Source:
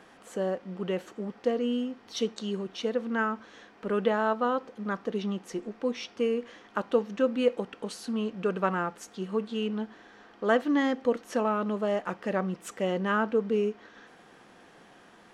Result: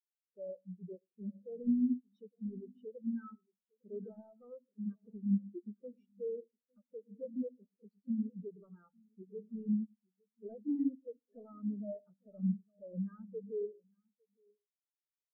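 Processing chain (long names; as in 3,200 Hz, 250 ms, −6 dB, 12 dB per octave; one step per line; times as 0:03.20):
downward compressor 6 to 1, threshold −29 dBFS, peak gain reduction 11 dB
hard clipping −34 dBFS, distortion −8 dB
single-tap delay 856 ms −8.5 dB
on a send at −10 dB: convolution reverb RT60 0.65 s, pre-delay 94 ms
on the sum: every bin expanded away from the loudest bin 4 to 1
level +4.5 dB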